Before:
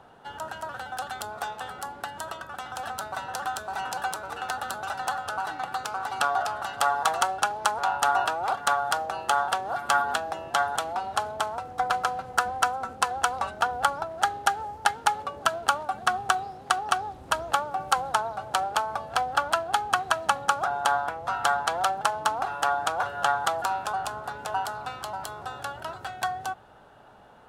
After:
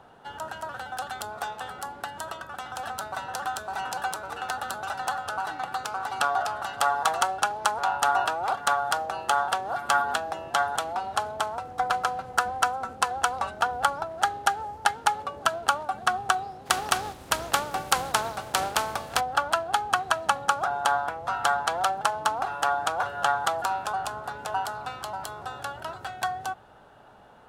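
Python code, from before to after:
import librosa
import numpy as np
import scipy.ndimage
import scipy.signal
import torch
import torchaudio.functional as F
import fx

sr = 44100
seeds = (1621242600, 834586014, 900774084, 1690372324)

y = fx.spec_flatten(x, sr, power=0.64, at=(16.65, 19.19), fade=0.02)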